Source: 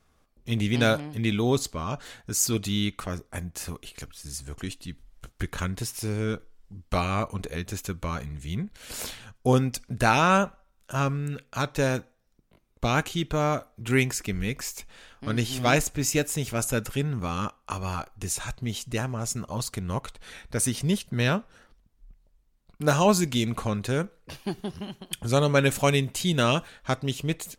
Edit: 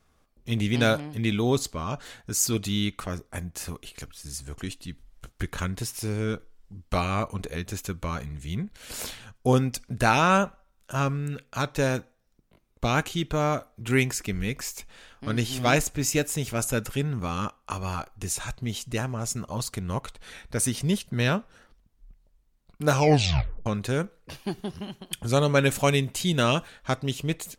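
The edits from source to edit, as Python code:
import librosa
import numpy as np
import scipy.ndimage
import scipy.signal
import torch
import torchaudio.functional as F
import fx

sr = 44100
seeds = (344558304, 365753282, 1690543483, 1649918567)

y = fx.edit(x, sr, fx.tape_stop(start_s=22.91, length_s=0.75), tone=tone)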